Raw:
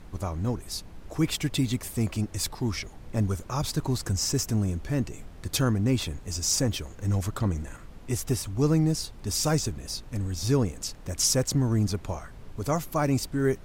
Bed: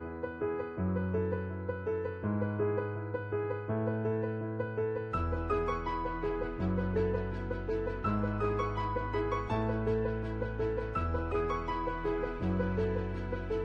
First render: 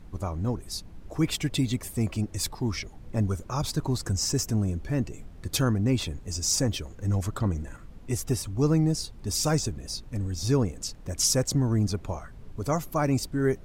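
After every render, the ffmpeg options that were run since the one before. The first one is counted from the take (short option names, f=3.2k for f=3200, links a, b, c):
-af "afftdn=nr=6:nf=-46"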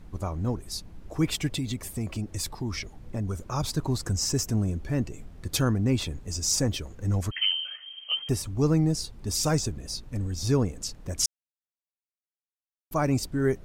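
-filter_complex "[0:a]asettb=1/sr,asplit=3[a][b][c];[a]atrim=end=1.544[d];[b]atrim=start=1.54:end=3.36,asetpts=PTS-STARTPTS,afade=t=in:d=0.004:c=qsin,afade=t=out:st=1.816:d=0.004:c=qsin,acompressor=threshold=-27dB:ratio=3:attack=3.2:release=140:knee=1:detection=peak[e];[c]atrim=start=3.356[f];[d][e]acrossfade=d=0.004:c1=hsin:c2=qsin[g];[g][f]acrossfade=d=0.004:c1=qsin:c2=hsin,asettb=1/sr,asplit=3[h][i][j];[h]atrim=end=7.314[k];[i]atrim=start=7.31:end=8.29,asetpts=PTS-STARTPTS,afade=t=in:d=0.004:c=qsin,afade=t=out:st=0.976:d=0.004:c=qsin,lowpass=f=2.7k:t=q:w=0.5098,lowpass=f=2.7k:t=q:w=0.6013,lowpass=f=2.7k:t=q:w=0.9,lowpass=f=2.7k:t=q:w=2.563,afreqshift=-3200[l];[j]atrim=start=8.286[m];[k][l]acrossfade=d=0.004:c1=hsin:c2=qsin[n];[n][m]acrossfade=d=0.004:c1=qsin:c2=hsin,asplit=3[o][p][q];[o]atrim=end=11.26,asetpts=PTS-STARTPTS,afade=t=out:st=11.256:d=0.004:c=hsin[r];[p]atrim=start=11.26:end=12.91,asetpts=PTS-STARTPTS,volume=0[s];[q]atrim=start=12.91,asetpts=PTS-STARTPTS,afade=t=in:d=0.004:c=hsin[t];[r][s][t]concat=n=3:v=0:a=1"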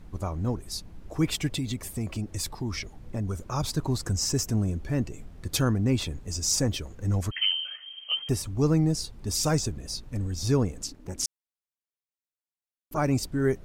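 -filter_complex "[0:a]asettb=1/sr,asplit=3[a][b][c];[a]atrim=end=10.864[d];[b]atrim=start=10.86:end=12.98,asetpts=PTS-STARTPTS,afade=t=in:d=0.004:c=qsin,afade=t=out:st=2.116:d=0.004:c=qsin,tremolo=f=280:d=0.974[e];[c]atrim=start=12.976[f];[d][e]acrossfade=d=0.004:c1=hsin:c2=qsin[g];[g][f]acrossfade=d=0.004:c1=qsin:c2=hsin"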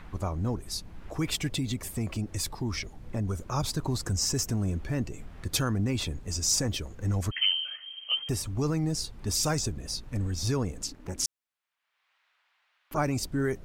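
-filter_complex "[0:a]acrossover=split=830|3200[a][b][c];[a]alimiter=limit=-21.5dB:level=0:latency=1[d];[b]acompressor=mode=upward:threshold=-45dB:ratio=2.5[e];[d][e][c]amix=inputs=3:normalize=0"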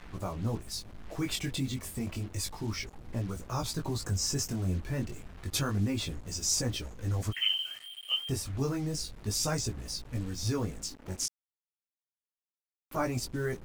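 -af "flanger=delay=16.5:depth=6.1:speed=0.3,acrusher=bits=7:mix=0:aa=0.5"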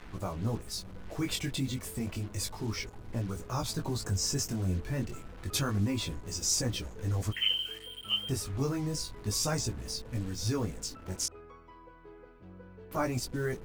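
-filter_complex "[1:a]volume=-19dB[a];[0:a][a]amix=inputs=2:normalize=0"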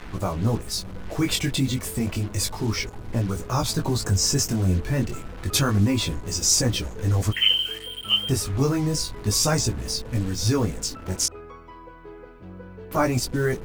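-af "volume=9.5dB"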